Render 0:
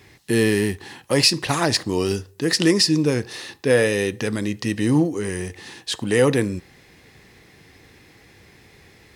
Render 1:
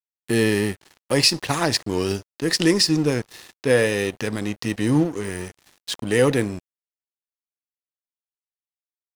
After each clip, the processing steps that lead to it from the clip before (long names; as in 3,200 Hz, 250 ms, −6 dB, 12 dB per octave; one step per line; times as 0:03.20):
dead-zone distortion −34.5 dBFS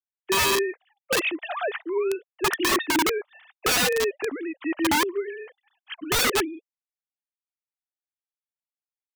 three sine waves on the formant tracks
wrap-around overflow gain 17 dB